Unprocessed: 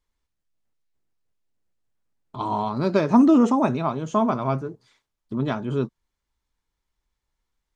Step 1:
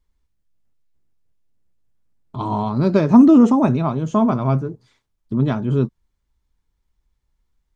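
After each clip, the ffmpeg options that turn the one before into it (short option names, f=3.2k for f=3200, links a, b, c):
-af "lowshelf=f=270:g=11.5"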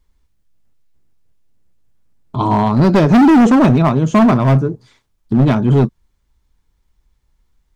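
-af "volume=15dB,asoftclip=hard,volume=-15dB,volume=8.5dB"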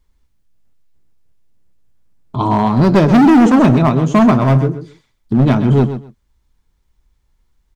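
-af "aecho=1:1:128|256:0.282|0.0479"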